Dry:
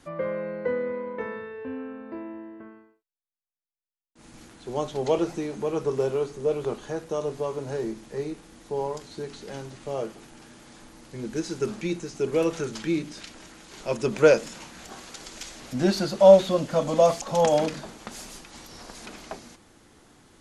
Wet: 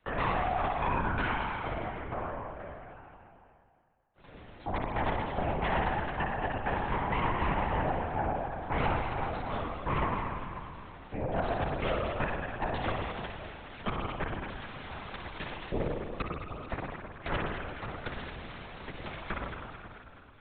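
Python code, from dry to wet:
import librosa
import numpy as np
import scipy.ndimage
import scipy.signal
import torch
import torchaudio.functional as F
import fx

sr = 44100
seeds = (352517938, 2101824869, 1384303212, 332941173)

y = fx.spec_gate(x, sr, threshold_db=-25, keep='strong')
y = fx.dynamic_eq(y, sr, hz=280.0, q=3.5, threshold_db=-39.0, ratio=4.0, max_db=-3)
y = fx.gate_flip(y, sr, shuts_db=-18.0, range_db=-38)
y = fx.cheby_harmonics(y, sr, harmonics=(3, 4, 8), levels_db=(-9, -13, -9), full_scale_db=-16.0)
y = fx.echo_alternate(y, sr, ms=108, hz=1300.0, feedback_pct=70, wet_db=-5.5)
y = fx.rev_spring(y, sr, rt60_s=1.2, pass_ms=(49,), chirp_ms=20, drr_db=0.5)
y = fx.lpc_vocoder(y, sr, seeds[0], excitation='whisper', order=10)
y = fx.band_squash(y, sr, depth_pct=40)
y = y * 10.0 ** (-5.0 / 20.0)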